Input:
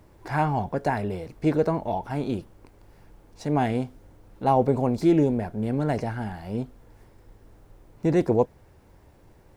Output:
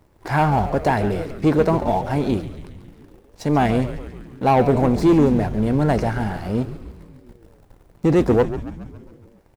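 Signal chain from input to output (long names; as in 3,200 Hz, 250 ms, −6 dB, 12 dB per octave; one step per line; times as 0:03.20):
leveller curve on the samples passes 2
echo with shifted repeats 138 ms, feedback 62%, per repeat −97 Hz, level −12 dB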